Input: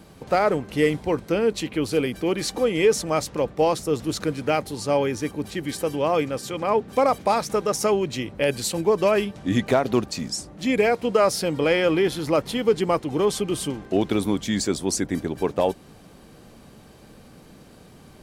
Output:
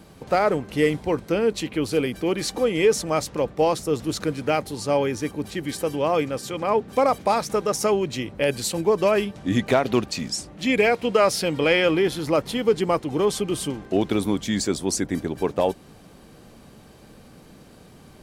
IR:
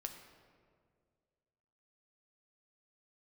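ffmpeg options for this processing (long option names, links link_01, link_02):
-filter_complex "[0:a]asettb=1/sr,asplit=3[link_01][link_02][link_03];[link_01]atrim=end=9.704[link_04];[link_02]atrim=start=9.7:end=11.91,asetpts=PTS-STARTPTS,afade=type=in:duration=0.004:curve=qsin,afade=type=out:start_time=2.206:duration=0.004:curve=qsin,equalizer=frequency=2700:width=1.1:gain=5[link_05];[link_03]atrim=start=11.906[link_06];[link_04][link_05]acrossfade=duration=0.004:curve1=hsin:curve2=qsin[link_07];[link_07][link_06]acrossfade=duration=0.004:curve1=qsin:curve2=hsin"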